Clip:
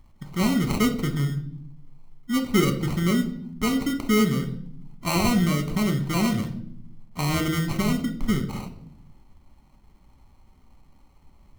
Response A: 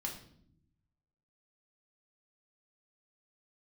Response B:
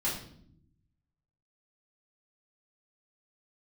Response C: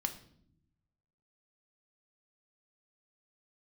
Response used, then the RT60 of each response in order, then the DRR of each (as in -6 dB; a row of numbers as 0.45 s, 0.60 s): C; 0.65 s, 0.65 s, 0.70 s; -1.0 dB, -8.5 dB, 5.5 dB